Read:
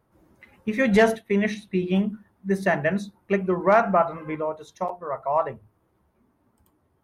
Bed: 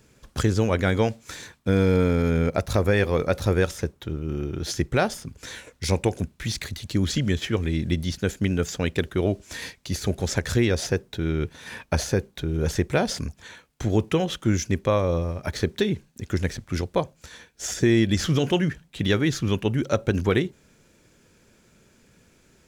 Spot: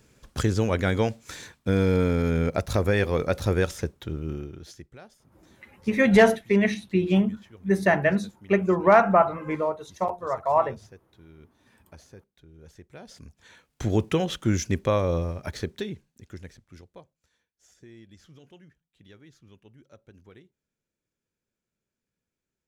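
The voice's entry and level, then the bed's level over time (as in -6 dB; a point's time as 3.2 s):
5.20 s, +1.5 dB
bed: 4.28 s -2 dB
4.96 s -25.5 dB
12.88 s -25.5 dB
13.8 s -1.5 dB
15.24 s -1.5 dB
17.43 s -30 dB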